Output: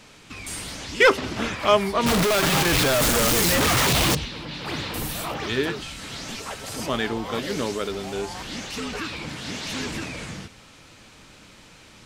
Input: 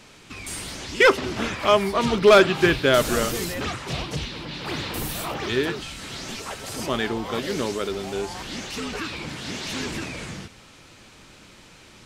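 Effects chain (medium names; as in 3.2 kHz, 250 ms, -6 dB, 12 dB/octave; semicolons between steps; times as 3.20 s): 2.06–4.15 s: one-bit comparator; band-stop 370 Hz, Q 12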